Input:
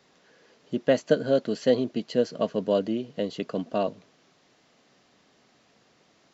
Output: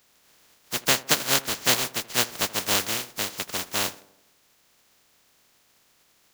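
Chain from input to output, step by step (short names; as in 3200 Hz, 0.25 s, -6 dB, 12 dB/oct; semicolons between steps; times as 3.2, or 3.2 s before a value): spectral contrast lowered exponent 0.13; tape echo 80 ms, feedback 60%, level -16.5 dB, low-pass 1200 Hz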